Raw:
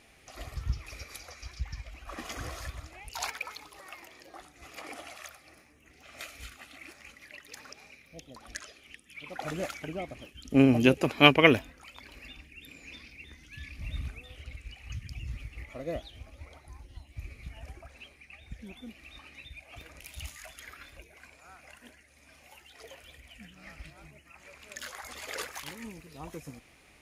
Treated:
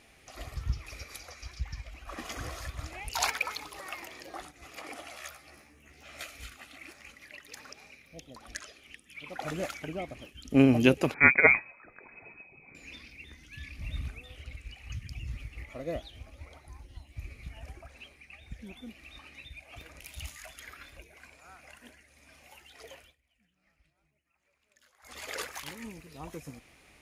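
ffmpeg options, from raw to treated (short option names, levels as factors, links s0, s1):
-filter_complex "[0:a]asettb=1/sr,asplit=3[s0][s1][s2];[s0]atrim=end=5.124[s3];[s1]atrim=start=5.12:end=6.23,asetpts=PTS-STARTPTS,afade=t=in:d=0.004:c=qsin,afade=t=out:st=1.106:d=0.004:c=qsin,asplit=2[s4][s5];[s5]adelay=14,volume=0.794[s6];[s4][s6]amix=inputs=2:normalize=0,atrim=end_sample=48951[s7];[s2]atrim=start=6.226[s8];[s3][s7]acrossfade=d=0.004:c1=hsin:c2=qsin[s9];[s9][s8]acrossfade=d=0.004:c1=qsin:c2=hsin,asettb=1/sr,asplit=3[s10][s11][s12];[s10]atrim=end=11.144[s13];[s11]atrim=start=11.14:end=12.75,asetpts=PTS-STARTPTS,afade=t=in:d=0.004:c=qsin,afade=t=out:st=1.606:d=0.004:c=qsin,lowpass=f=2200:t=q:w=0.5098,lowpass=f=2200:t=q:w=0.6013,lowpass=f=2200:t=q:w=0.9,lowpass=f=2200:t=q:w=2.563,afreqshift=-2600[s14];[s12]atrim=start=12.746[s15];[s13][s14]acrossfade=d=0.004:c1=hsin:c2=qsin[s16];[s16][s15]acrossfade=d=0.004:c1=qsin:c2=hsin,asplit=5[s17][s18][s19][s20][s21];[s17]atrim=end=2.792[s22];[s18]atrim=start=2.788:end=4.512,asetpts=PTS-STARTPTS,volume=2[s23];[s19]atrim=start=4.508:end=23.15,asetpts=PTS-STARTPTS,afade=t=out:st=18.452:d=0.19:silence=0.0668344[s24];[s20]atrim=start=23.15:end=25,asetpts=PTS-STARTPTS,volume=0.0668[s25];[s21]atrim=start=25,asetpts=PTS-STARTPTS,afade=t=in:d=0.19:silence=0.0668344[s26];[s22][s23]acrossfade=d=0.004:c1=hsin:c2=hsin[s27];[s24][s25][s26]concat=n=3:v=0:a=1[s28];[s27][s28]acrossfade=d=0.004:c1=hsin:c2=hsin"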